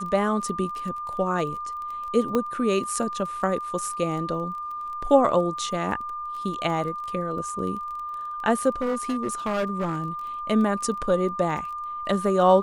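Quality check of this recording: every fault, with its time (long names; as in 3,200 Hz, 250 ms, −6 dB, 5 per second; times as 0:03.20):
surface crackle 17 per second −33 dBFS
whistle 1,200 Hz −30 dBFS
0:02.35: click −12 dBFS
0:08.81–0:10.04: clipping −21.5 dBFS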